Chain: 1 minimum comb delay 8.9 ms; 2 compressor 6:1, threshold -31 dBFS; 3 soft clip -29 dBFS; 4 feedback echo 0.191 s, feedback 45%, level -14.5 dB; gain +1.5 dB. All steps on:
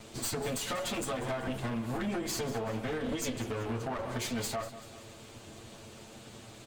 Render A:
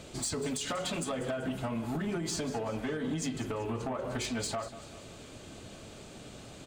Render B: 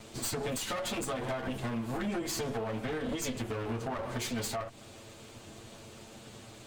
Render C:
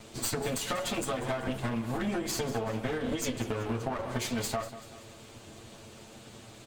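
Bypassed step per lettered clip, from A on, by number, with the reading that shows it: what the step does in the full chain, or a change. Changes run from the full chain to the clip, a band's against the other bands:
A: 1, momentary loudness spread change -1 LU; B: 4, echo-to-direct -13.5 dB to none; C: 3, distortion -15 dB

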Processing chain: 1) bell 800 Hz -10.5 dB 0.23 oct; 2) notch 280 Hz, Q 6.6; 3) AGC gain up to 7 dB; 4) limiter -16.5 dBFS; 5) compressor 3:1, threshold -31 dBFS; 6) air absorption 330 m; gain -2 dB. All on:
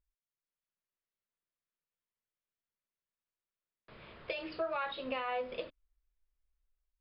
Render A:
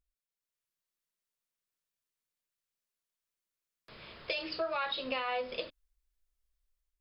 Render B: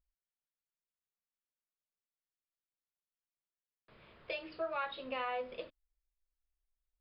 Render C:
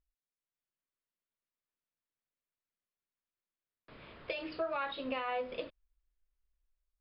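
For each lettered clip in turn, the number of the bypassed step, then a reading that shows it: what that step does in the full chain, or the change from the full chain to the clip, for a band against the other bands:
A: 6, 4 kHz band +7.0 dB; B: 3, loudness change -1.5 LU; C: 2, 250 Hz band +2.5 dB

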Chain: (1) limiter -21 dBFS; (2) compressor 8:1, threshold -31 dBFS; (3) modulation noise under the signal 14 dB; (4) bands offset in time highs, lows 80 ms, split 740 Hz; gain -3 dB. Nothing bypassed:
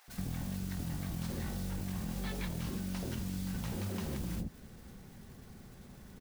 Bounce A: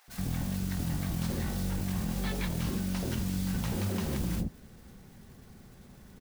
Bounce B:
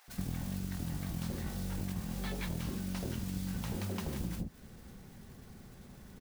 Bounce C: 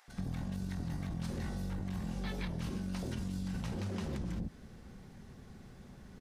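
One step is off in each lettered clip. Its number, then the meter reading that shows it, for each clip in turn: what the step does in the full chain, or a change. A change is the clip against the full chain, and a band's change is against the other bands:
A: 2, mean gain reduction 4.0 dB; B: 1, mean gain reduction 3.0 dB; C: 3, 8 kHz band -6.5 dB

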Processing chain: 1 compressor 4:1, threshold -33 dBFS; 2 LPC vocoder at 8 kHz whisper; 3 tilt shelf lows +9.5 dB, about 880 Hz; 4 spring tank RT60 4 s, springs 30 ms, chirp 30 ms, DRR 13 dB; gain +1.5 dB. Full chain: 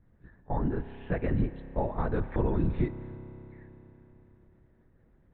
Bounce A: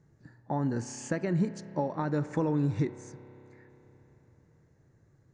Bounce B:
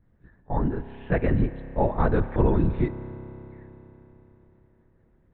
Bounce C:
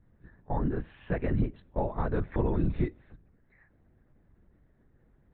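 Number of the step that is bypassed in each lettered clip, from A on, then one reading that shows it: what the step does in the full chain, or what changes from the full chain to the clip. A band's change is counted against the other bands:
2, 250 Hz band +1.5 dB; 1, loudness change +6.0 LU; 4, momentary loudness spread change -12 LU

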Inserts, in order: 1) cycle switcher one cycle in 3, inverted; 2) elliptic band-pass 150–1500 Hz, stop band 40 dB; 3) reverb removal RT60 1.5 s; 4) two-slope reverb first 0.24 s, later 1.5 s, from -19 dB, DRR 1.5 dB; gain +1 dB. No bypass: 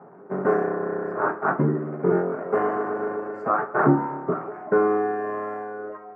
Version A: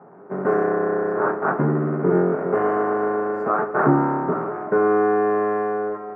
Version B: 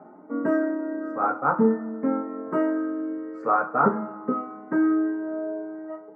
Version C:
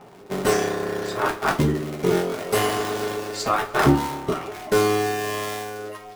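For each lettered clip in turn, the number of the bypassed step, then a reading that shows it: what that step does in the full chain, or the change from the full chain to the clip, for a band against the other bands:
3, crest factor change -2.5 dB; 1, 125 Hz band -8.0 dB; 2, loudness change +1.0 LU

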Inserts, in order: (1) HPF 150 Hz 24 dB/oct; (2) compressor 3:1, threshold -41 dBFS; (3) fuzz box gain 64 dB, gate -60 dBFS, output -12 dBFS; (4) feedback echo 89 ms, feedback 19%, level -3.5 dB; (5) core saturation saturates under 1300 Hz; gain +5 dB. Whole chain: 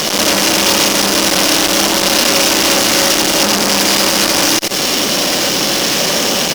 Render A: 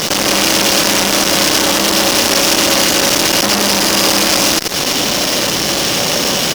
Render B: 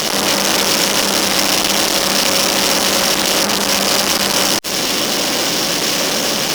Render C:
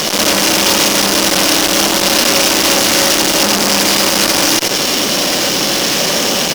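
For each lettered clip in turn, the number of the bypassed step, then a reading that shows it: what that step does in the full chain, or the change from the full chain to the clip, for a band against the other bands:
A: 1, 125 Hz band +1.5 dB; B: 4, crest factor change -1.5 dB; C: 2, mean gain reduction 6.0 dB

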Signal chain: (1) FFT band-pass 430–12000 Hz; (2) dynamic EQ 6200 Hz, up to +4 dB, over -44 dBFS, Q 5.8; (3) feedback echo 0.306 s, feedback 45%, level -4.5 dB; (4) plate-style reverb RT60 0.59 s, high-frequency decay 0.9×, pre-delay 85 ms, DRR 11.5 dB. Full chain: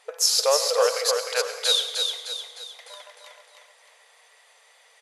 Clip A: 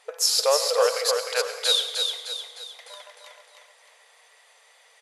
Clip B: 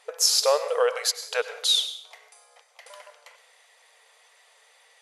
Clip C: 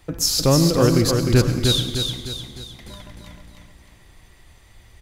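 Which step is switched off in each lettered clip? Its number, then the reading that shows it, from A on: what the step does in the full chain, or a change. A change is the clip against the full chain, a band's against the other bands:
2, 8 kHz band -1.5 dB; 3, echo-to-direct -2.5 dB to -11.5 dB; 1, 500 Hz band +2.0 dB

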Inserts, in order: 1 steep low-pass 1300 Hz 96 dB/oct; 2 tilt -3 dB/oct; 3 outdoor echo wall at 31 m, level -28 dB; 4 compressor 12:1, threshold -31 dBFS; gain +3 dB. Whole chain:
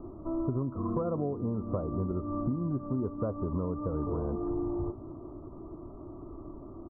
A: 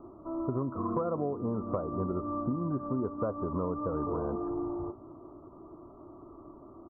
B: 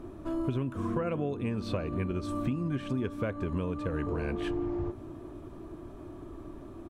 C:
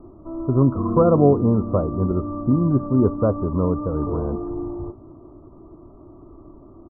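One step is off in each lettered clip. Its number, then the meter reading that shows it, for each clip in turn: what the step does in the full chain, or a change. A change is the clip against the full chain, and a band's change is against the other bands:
2, 1 kHz band +5.5 dB; 1, crest factor change +1.5 dB; 4, mean gain reduction 7.0 dB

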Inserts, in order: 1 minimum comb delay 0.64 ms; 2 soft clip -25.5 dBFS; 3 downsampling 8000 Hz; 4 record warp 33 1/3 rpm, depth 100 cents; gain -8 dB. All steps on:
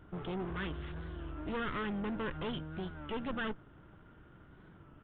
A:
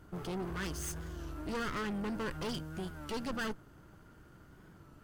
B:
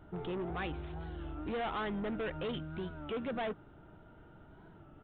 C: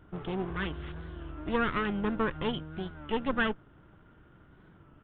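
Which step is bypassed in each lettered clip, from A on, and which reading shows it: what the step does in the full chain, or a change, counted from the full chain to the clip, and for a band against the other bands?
3, 4 kHz band +2.0 dB; 1, 500 Hz band +3.5 dB; 2, distortion -7 dB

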